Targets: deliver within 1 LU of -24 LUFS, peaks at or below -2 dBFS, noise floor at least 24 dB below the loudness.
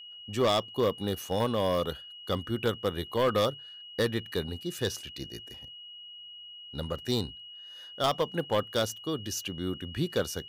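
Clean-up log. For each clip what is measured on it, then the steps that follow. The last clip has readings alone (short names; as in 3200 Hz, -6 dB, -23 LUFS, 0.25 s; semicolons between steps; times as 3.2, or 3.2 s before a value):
clipped 0.7%; flat tops at -19.5 dBFS; steady tone 2900 Hz; tone level -44 dBFS; loudness -31.0 LUFS; peak -19.5 dBFS; loudness target -24.0 LUFS
-> clip repair -19.5 dBFS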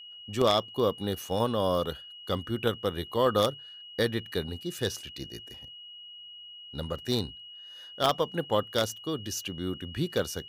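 clipped 0.0%; steady tone 2900 Hz; tone level -44 dBFS
-> notch 2900 Hz, Q 30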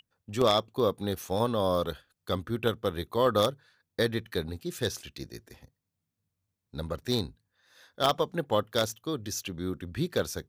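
steady tone none; loudness -30.0 LUFS; peak -10.5 dBFS; loudness target -24.0 LUFS
-> gain +6 dB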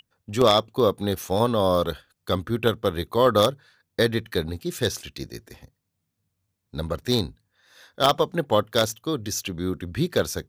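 loudness -24.0 LUFS; peak -4.5 dBFS; noise floor -78 dBFS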